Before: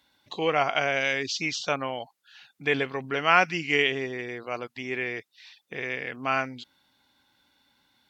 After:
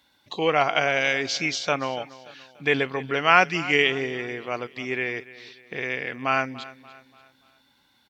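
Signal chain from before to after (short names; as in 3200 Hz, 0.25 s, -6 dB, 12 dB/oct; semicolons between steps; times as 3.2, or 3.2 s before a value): feedback echo 0.29 s, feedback 43%, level -18 dB; gain +3 dB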